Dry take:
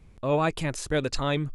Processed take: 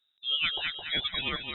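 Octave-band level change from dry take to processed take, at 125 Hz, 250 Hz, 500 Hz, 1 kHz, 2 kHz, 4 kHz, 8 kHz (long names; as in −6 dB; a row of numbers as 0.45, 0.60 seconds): −19.0 dB, −16.0 dB, −19.5 dB, −11.0 dB, +1.5 dB, +10.0 dB, below −40 dB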